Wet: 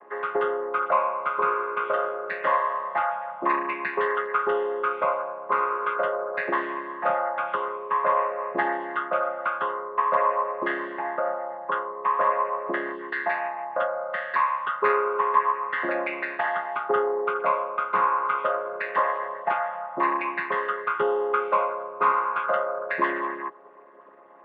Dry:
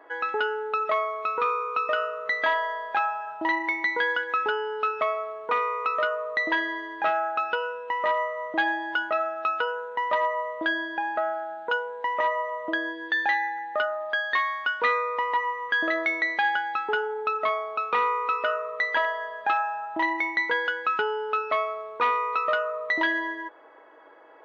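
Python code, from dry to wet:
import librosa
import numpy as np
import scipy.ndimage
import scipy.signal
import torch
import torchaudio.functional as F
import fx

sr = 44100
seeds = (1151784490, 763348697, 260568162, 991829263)

y = fx.chord_vocoder(x, sr, chord='major triad', root=49)
y = scipy.signal.sosfilt(scipy.signal.butter(2, 2800.0, 'lowpass', fs=sr, output='sos'), y)
y = fx.peak_eq(y, sr, hz=1100.0, db=12.0, octaves=0.2)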